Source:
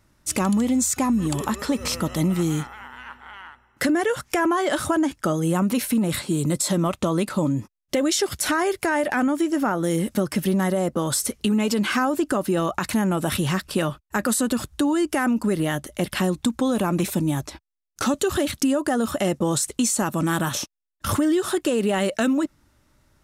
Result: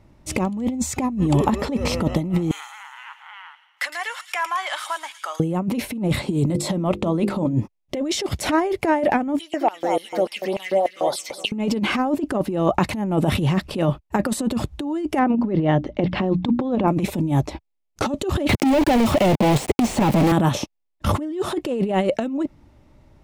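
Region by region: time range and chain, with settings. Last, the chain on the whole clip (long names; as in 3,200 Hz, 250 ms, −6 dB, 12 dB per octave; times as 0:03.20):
0:02.51–0:05.40: high-pass filter 1,100 Hz 24 dB per octave + delay with a high-pass on its return 111 ms, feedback 54%, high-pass 3,500 Hz, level −5 dB
0:06.48–0:07.53: parametric band 6,300 Hz −2.5 dB 0.27 octaves + mains-hum notches 50/100/150/200/250/300/350/400/450/500 Hz
0:09.39–0:11.52: all-pass phaser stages 6, 3.6 Hz, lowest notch 790–2,400 Hz + repeating echo 208 ms, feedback 37%, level −9 dB + auto-filter high-pass square 3.4 Hz 720–2,600 Hz
0:15.19–0:16.88: low-pass filter 5,800 Hz 24 dB per octave + high-shelf EQ 4,100 Hz −11 dB + mains-hum notches 60/120/180/240/300 Hz
0:18.49–0:20.32: notch filter 1,200 Hz, Q 14 + log-companded quantiser 2 bits + multiband upward and downward compressor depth 100%
whole clip: drawn EQ curve 830 Hz 0 dB, 1,500 Hz −13 dB, 2,200 Hz −5 dB, 9,400 Hz −18 dB; compressor whose output falls as the input rises −25 dBFS, ratio −0.5; level +6.5 dB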